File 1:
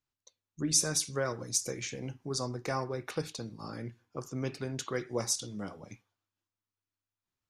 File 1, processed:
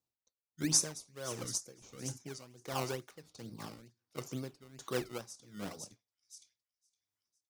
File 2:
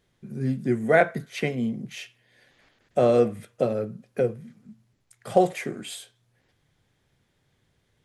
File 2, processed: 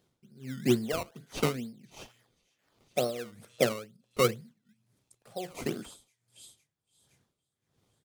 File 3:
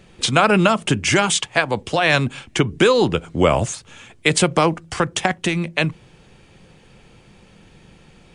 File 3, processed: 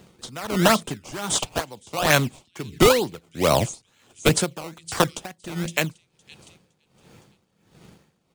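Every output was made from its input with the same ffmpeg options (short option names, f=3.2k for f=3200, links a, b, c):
-filter_complex "[0:a]highpass=91,acrossover=split=3100[a][b];[a]acrusher=samples=18:mix=1:aa=0.000001:lfo=1:lforange=18:lforate=2.2[c];[b]aecho=1:1:513|1026|1539|2052:0.251|0.098|0.0382|0.0149[d];[c][d]amix=inputs=2:normalize=0,aeval=exprs='val(0)*pow(10,-20*(0.5-0.5*cos(2*PI*1.4*n/s))/20)':c=same"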